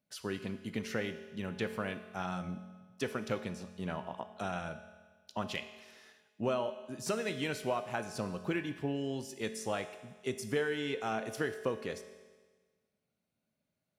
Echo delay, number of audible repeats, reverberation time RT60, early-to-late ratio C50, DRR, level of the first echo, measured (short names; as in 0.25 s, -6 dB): none, none, 1.4 s, 10.5 dB, 8.5 dB, none